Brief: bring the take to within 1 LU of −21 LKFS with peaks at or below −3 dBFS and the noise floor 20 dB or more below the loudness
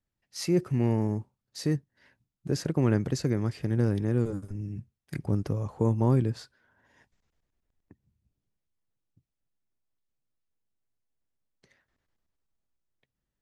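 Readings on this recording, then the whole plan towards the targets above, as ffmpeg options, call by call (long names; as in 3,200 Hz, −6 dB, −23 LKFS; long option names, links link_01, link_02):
integrated loudness −28.5 LKFS; sample peak −12.5 dBFS; target loudness −21.0 LKFS
→ -af "volume=7.5dB"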